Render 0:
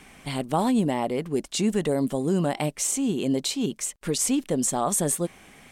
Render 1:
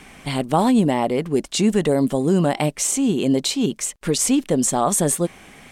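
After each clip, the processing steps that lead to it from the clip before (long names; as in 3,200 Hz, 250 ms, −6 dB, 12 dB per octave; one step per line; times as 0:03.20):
high-shelf EQ 9,100 Hz −4 dB
level +6 dB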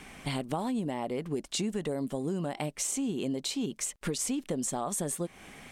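downward compressor 6 to 1, threshold −25 dBFS, peak gain reduction 12 dB
level −4.5 dB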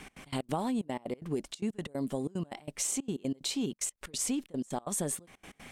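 gate pattern "x.x.x.xxx" 185 BPM −24 dB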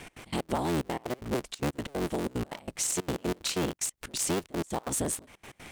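sub-harmonics by changed cycles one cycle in 3, inverted
level +2.5 dB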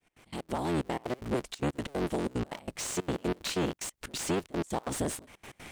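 fade in at the beginning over 0.82 s
slew-rate limiting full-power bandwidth 120 Hz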